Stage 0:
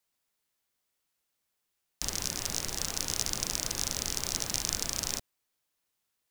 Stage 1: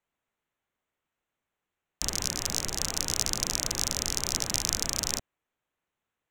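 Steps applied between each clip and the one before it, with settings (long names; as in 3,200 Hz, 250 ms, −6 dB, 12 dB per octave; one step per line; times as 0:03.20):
adaptive Wiener filter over 9 samples
level +3.5 dB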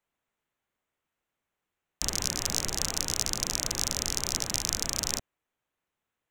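speech leveller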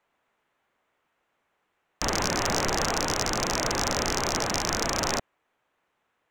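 mid-hump overdrive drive 13 dB, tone 1,200 Hz, clips at −4.5 dBFS
level +9 dB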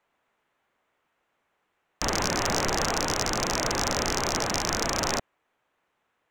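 no processing that can be heard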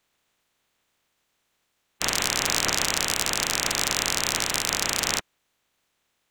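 ceiling on every frequency bin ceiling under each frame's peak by 22 dB
level +1.5 dB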